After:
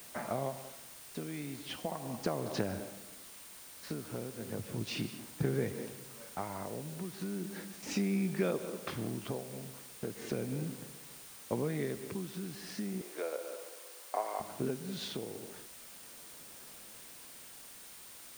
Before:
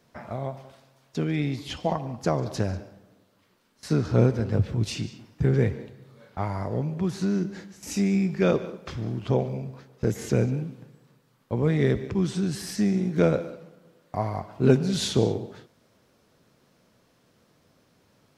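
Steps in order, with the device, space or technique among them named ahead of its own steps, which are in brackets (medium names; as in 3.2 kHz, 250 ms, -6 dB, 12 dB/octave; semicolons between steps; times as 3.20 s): medium wave at night (band-pass 180–4300 Hz; compression, threshold -31 dBFS, peak gain reduction 16.5 dB; tremolo 0.36 Hz, depth 64%; whistle 9 kHz -59 dBFS; white noise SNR 13 dB); 13.01–14.40 s: high-pass 410 Hz 24 dB/octave; trim +2 dB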